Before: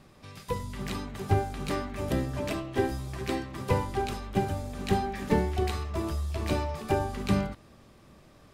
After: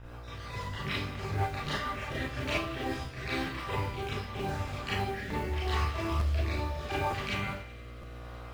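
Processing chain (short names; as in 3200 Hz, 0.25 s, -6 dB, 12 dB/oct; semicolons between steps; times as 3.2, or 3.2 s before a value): random spectral dropouts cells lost 20%; LPF 2600 Hz 12 dB/oct; on a send: thin delay 93 ms, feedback 84%, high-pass 1400 Hz, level -17.5 dB; on the sum: limiter -23.5 dBFS, peak gain reduction 10.5 dB; tilt +4 dB/oct; buzz 60 Hz, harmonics 27, -52 dBFS -3 dB/oct; rotary speaker horn 6.3 Hz, later 0.8 Hz, at 2.41; modulation noise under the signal 24 dB; resonant low shelf 150 Hz +10 dB, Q 1.5; Schroeder reverb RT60 0.35 s, combs from 27 ms, DRR -6 dB; crackling interface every 0.91 s, samples 512, repeat, from 0.73; Doppler distortion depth 0.15 ms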